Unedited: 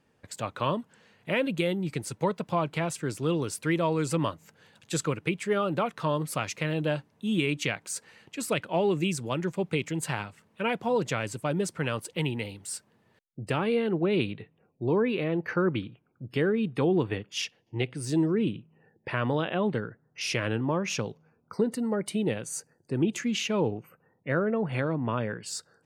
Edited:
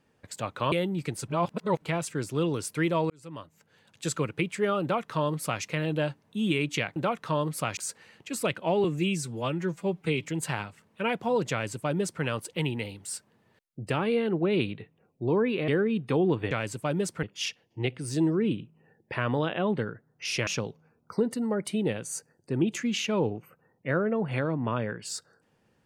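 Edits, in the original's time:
0.72–1.6 cut
2.16–2.7 reverse
3.98–5.12 fade in
5.7–6.51 copy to 7.84
8.91–9.85 stretch 1.5×
11.11–11.83 copy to 17.19
15.28–16.36 cut
20.43–20.88 cut

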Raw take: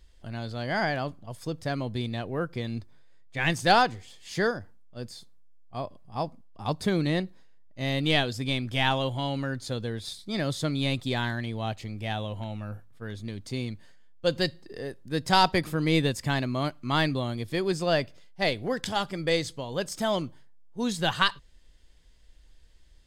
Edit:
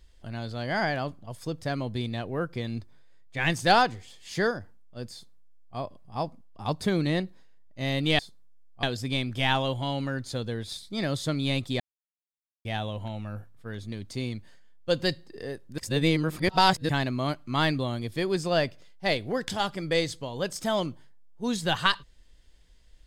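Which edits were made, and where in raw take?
5.13–5.77 copy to 8.19
11.16–12.01 mute
15.14–16.25 reverse

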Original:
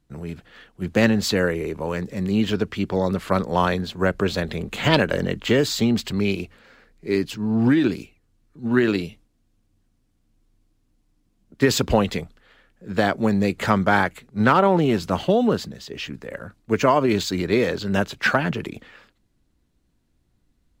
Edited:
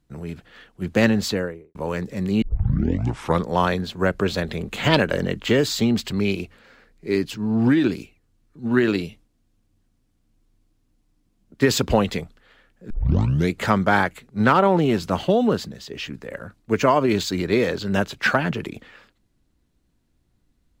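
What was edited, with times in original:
1.16–1.75 studio fade out
2.42 tape start 1.04 s
12.9 tape start 0.63 s

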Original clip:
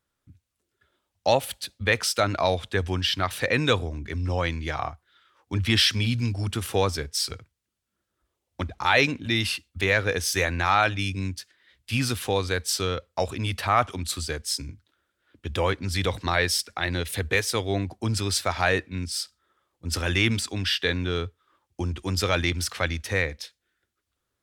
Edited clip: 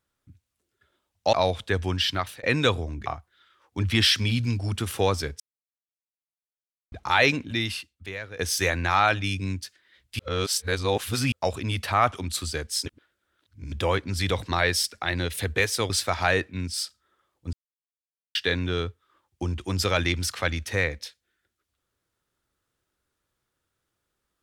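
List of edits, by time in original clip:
1.33–2.37 cut
3.08–3.47 fade out equal-power
4.1–4.81 cut
7.15–8.67 mute
9.18–10.14 fade out quadratic, to -15.5 dB
11.94–13.07 reverse
14.61–15.47 reverse
17.65–18.28 cut
19.91–20.73 mute

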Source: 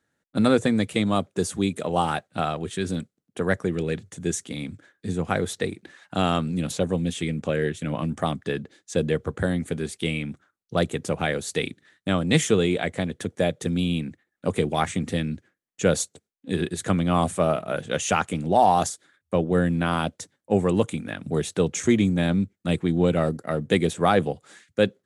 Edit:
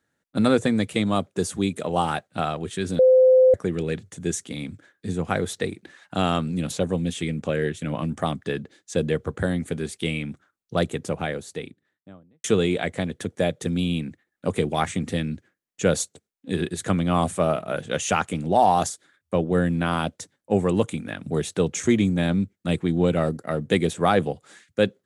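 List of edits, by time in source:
2.99–3.54 bleep 515 Hz -11 dBFS
10.75–12.44 studio fade out

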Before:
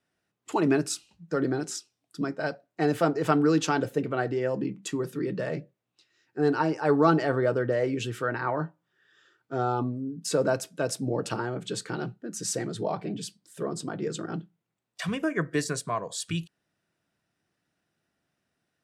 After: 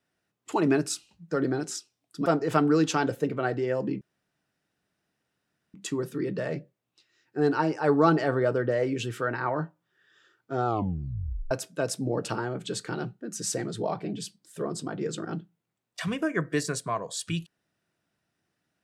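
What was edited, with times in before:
2.26–3 cut
4.75 insert room tone 1.73 s
9.67 tape stop 0.85 s

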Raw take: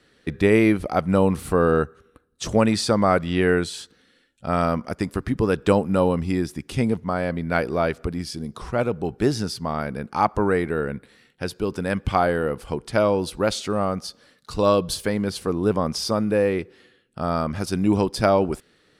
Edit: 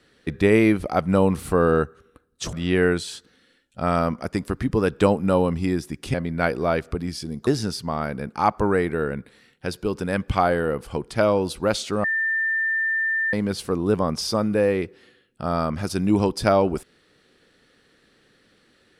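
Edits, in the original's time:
2.53–3.19 cut
6.8–7.26 cut
8.59–9.24 cut
13.81–15.1 bleep 1790 Hz -20 dBFS

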